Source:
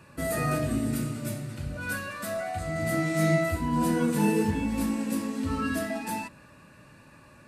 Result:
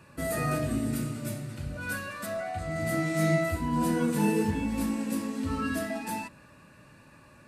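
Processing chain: 2.26–2.71 high shelf 7600 Hz -8.5 dB; gain -1.5 dB

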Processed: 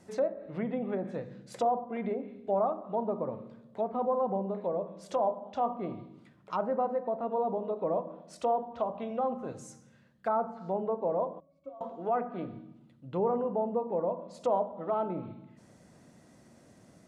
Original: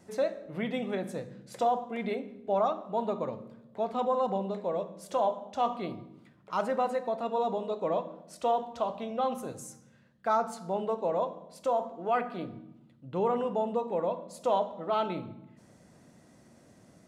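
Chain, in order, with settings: 11.4–11.81 octave resonator C#, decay 0.2 s; treble ducked by the level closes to 970 Hz, closed at -28 dBFS

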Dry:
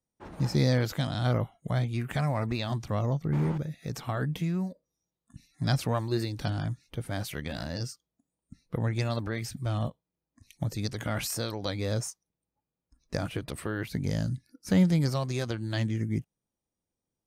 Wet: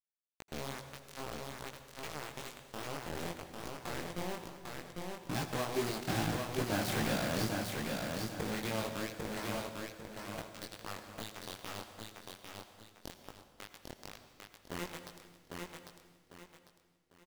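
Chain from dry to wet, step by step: Doppler pass-by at 6.98, 20 m/s, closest 11 m; HPF 180 Hz 12 dB/oct; high shelf 4200 Hz -8.5 dB; in parallel at -0.5 dB: compressor 8:1, threshold -50 dBFS, peak gain reduction 17.5 dB; on the sum: companded quantiser 2-bit; chorus 2.4 Hz, delay 17.5 ms, depth 6.4 ms; feedback echo 0.799 s, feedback 32%, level -3.5 dB; on a send at -9 dB: reverb RT60 1.7 s, pre-delay 78 ms; on the sum: gain -2 dB

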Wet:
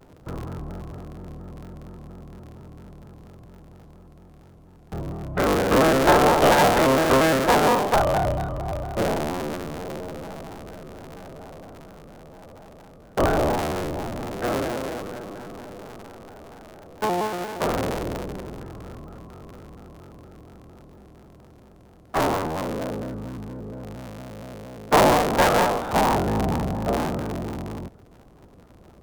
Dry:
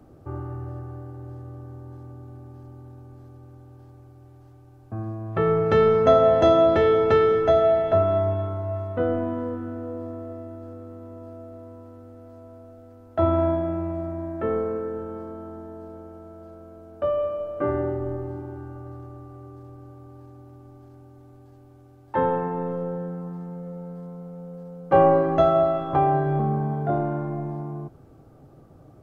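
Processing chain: cycle switcher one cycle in 3, inverted; shaped vibrato square 4.3 Hz, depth 160 cents

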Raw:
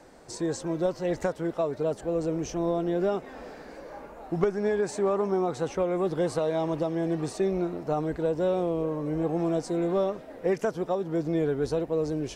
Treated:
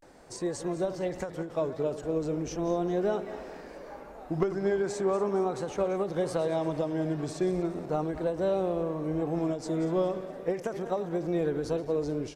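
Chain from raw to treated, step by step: regenerating reverse delay 0.112 s, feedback 66%, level -13 dB; vibrato 0.38 Hz 87 cents; speakerphone echo 0.19 s, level -19 dB; ending taper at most 140 dB/s; gain -2 dB

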